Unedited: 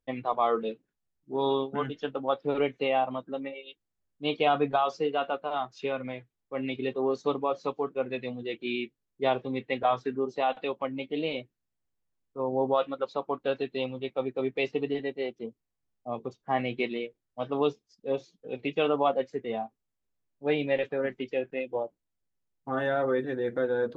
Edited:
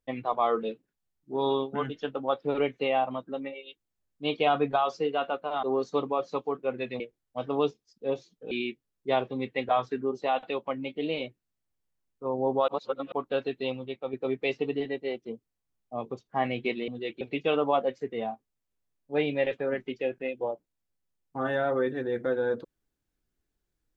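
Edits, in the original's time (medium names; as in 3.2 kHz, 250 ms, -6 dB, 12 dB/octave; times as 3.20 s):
5.63–6.95 s: delete
8.32–8.65 s: swap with 17.02–18.53 s
12.82–13.26 s: reverse
13.86–14.27 s: fade out, to -6 dB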